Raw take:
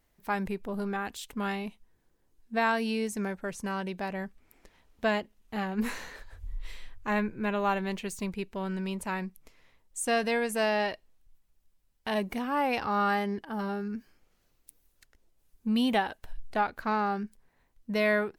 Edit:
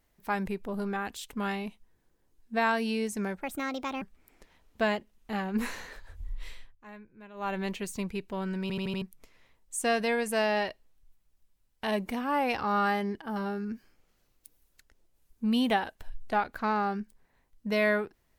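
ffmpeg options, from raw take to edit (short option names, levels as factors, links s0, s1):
-filter_complex "[0:a]asplit=10[s0][s1][s2][s3][s4][s5][s6][s7][s8][s9];[s0]atrim=end=3.424[s10];[s1]atrim=start=3.42:end=4.25,asetpts=PTS-STARTPTS,asetrate=61299,aresample=44100,atrim=end_sample=26333,asetpts=PTS-STARTPTS[s11];[s2]atrim=start=4.246:end=7,asetpts=PTS-STARTPTS,afade=t=out:st=2.484:d=0.27:silence=0.105925[s12];[s3]atrim=start=7:end=7.57,asetpts=PTS-STARTPTS,volume=0.106[s13];[s4]atrim=start=7.57:end=8.932,asetpts=PTS-STARTPTS,afade=t=in:d=0.27:silence=0.105925[s14];[s5]atrim=start=8.848:end=8.932[s15];[s6]atrim=start=8.848:end=8.932[s16];[s7]atrim=start=8.848:end=8.932[s17];[s8]atrim=start=8.848:end=8.932[s18];[s9]atrim=start=9.248[s19];[s10][s11]acrossfade=d=0.004:c1=hsin:c2=hsin[s20];[s12][s13][s14]concat=n=3:v=0:a=1[s21];[s20][s21]acrossfade=d=0.004:c1=hsin:c2=hsin[s22];[s22][s15]acrossfade=d=0.004:c1=hsin:c2=hsin[s23];[s23][s16]acrossfade=d=0.004:c1=hsin:c2=hsin[s24];[s24][s17]acrossfade=d=0.004:c1=hsin:c2=hsin[s25];[s25][s18]acrossfade=d=0.004:c1=hsin:c2=hsin[s26];[s26][s19]acrossfade=d=0.004:c1=hsin:c2=hsin"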